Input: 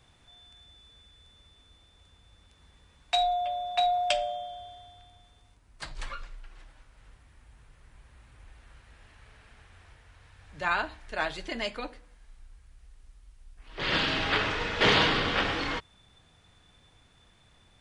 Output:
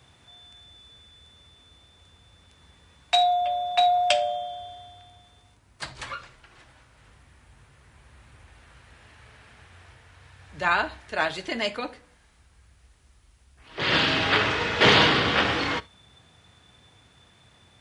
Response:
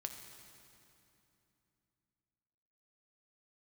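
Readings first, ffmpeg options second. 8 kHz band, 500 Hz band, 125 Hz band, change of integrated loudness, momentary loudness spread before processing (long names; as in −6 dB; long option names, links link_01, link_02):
+5.0 dB, +5.5 dB, +5.0 dB, +5.5 dB, 19 LU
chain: -filter_complex "[0:a]highpass=frequency=63:width=0.5412,highpass=frequency=63:width=1.3066,asplit=2[link_01][link_02];[1:a]atrim=start_sample=2205,atrim=end_sample=3528[link_03];[link_02][link_03]afir=irnorm=-1:irlink=0,volume=-2dB[link_04];[link_01][link_04]amix=inputs=2:normalize=0,volume=1.5dB"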